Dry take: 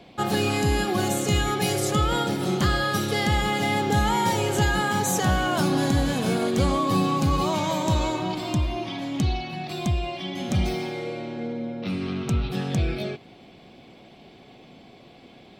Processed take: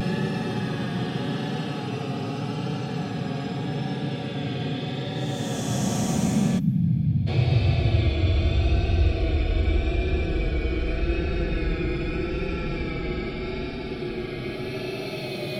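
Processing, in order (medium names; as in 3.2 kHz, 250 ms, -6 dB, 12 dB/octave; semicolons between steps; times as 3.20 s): Paulstretch 38×, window 0.05 s, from 12.59 s; vibrato 0.82 Hz 41 cents; time-frequency box 6.59–7.27 s, 310–11000 Hz -22 dB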